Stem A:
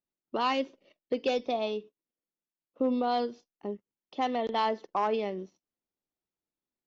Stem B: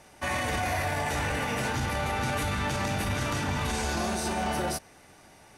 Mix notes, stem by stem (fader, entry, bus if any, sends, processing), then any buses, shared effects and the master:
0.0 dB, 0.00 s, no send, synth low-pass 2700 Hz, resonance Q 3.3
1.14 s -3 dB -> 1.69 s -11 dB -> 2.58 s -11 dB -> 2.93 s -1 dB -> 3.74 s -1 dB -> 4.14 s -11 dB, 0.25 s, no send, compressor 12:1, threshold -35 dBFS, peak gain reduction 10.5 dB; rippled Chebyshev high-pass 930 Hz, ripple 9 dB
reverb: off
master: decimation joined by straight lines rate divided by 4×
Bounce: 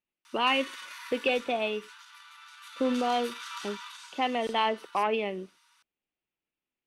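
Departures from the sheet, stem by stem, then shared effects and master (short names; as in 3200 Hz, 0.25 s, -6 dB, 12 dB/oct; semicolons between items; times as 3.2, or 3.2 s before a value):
stem B -3.0 dB -> +5.5 dB; master: missing decimation joined by straight lines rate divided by 4×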